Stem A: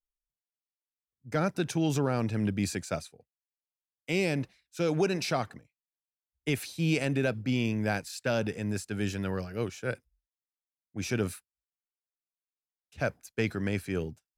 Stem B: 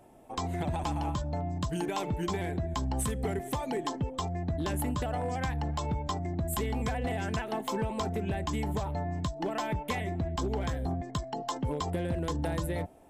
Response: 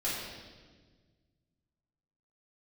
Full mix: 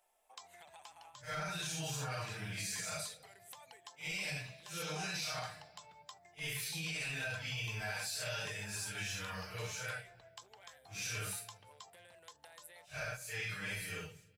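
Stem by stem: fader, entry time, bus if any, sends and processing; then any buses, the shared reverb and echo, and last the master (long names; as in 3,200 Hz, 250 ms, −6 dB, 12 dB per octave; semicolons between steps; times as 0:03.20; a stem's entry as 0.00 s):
+2.0 dB, 0.00 s, send −23.5 dB, random phases in long frames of 200 ms; comb filter 6.5 ms, depth 80%
−6.0 dB, 0.00 s, no send, Chebyshev high-pass filter 440 Hz, order 2; downward compressor 4 to 1, threshold −36 dBFS, peak gain reduction 6.5 dB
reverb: on, RT60 1.5 s, pre-delay 3 ms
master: guitar amp tone stack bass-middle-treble 10-0-10; brickwall limiter −31 dBFS, peak gain reduction 11 dB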